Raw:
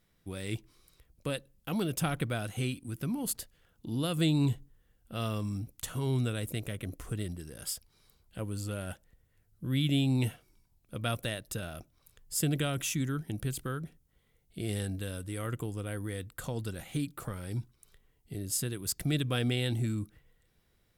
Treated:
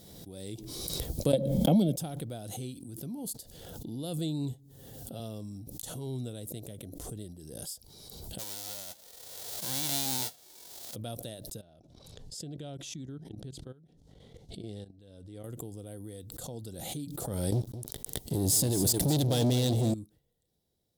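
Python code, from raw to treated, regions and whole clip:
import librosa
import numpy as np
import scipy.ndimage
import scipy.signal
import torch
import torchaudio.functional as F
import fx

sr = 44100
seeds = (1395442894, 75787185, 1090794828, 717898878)

y = fx.chain(x, sr, fx.gate_hold(open_db=-57.0, close_db=-61.0, hold_ms=71.0, range_db=-21, attack_ms=1.4, release_ms=100.0),
    fx.small_body(hz=(200.0, 570.0, 2200.0, 3200.0), ring_ms=20, db=16),
    fx.band_squash(depth_pct=100), at=(1.33, 1.96))
y = fx.chain(y, sr, fx.highpass(hz=66.0, slope=12),
    fx.comb(ms=7.4, depth=0.53), at=(4.52, 5.2))
y = fx.envelope_flatten(y, sr, power=0.1, at=(8.38, 10.94), fade=0.02)
y = fx.peak_eq(y, sr, hz=1700.0, db=8.5, octaves=2.2, at=(8.38, 10.94), fade=0.02)
y = fx.chain(y, sr, fx.lowpass(hz=4400.0, slope=12),
    fx.level_steps(step_db=17), at=(11.61, 15.44))
y = fx.chain(y, sr, fx.leveller(passes=5),
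    fx.echo_single(ms=213, db=-12.5), at=(17.52, 19.94))
y = fx.highpass(y, sr, hz=120.0, slope=6)
y = fx.band_shelf(y, sr, hz=1700.0, db=-15.0, octaves=1.7)
y = fx.pre_swell(y, sr, db_per_s=31.0)
y = y * 10.0 ** (-5.0 / 20.0)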